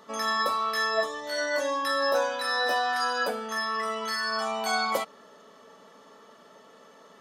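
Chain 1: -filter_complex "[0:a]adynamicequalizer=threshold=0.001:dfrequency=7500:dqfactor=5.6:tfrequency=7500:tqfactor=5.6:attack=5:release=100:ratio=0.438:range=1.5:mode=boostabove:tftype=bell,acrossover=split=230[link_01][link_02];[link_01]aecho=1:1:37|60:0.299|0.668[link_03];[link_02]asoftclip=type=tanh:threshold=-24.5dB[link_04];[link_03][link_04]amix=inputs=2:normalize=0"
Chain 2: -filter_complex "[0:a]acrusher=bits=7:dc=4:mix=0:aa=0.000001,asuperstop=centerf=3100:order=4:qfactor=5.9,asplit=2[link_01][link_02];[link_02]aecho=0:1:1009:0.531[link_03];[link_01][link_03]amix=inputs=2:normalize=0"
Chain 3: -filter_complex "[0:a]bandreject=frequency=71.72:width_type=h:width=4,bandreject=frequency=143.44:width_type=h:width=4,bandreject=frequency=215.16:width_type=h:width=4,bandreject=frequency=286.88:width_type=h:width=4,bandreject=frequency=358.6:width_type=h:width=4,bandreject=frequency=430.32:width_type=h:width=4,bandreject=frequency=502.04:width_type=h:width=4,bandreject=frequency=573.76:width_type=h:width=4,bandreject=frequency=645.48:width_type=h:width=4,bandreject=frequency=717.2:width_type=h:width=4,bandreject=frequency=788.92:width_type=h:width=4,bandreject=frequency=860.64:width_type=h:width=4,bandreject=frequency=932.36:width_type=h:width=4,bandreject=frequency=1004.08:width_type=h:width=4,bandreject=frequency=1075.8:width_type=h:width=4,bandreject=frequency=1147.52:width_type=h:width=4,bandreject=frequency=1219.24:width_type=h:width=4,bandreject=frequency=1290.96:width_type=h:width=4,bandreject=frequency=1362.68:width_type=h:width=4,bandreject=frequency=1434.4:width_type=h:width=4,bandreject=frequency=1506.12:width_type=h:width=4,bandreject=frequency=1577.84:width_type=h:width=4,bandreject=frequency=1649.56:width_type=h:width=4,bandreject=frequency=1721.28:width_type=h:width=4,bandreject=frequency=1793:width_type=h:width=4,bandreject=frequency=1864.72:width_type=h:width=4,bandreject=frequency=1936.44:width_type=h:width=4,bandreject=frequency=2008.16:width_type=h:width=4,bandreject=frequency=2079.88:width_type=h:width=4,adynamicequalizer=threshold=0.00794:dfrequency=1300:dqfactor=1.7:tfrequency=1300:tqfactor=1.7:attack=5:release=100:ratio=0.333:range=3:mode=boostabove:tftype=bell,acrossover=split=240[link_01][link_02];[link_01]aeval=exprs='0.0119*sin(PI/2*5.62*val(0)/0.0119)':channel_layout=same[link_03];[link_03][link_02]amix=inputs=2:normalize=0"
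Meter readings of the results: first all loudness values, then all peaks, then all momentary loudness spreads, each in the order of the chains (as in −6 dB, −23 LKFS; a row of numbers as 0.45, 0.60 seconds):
−30.0, −27.0, −24.5 LKFS; −22.5, −13.0, −11.0 dBFS; 3, 9, 4 LU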